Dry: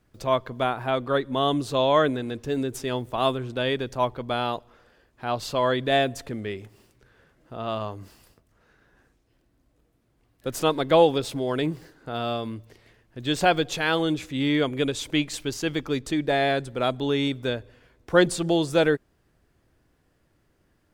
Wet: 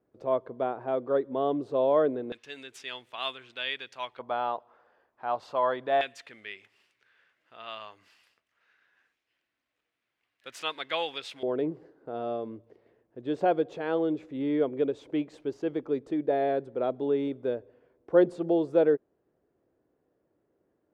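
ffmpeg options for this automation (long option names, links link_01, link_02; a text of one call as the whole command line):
ffmpeg -i in.wav -af "asetnsamples=nb_out_samples=441:pad=0,asendcmd='2.32 bandpass f 2600;4.19 bandpass f 860;6.01 bandpass f 2400;11.43 bandpass f 450',bandpass=frequency=460:width_type=q:width=1.5:csg=0" out.wav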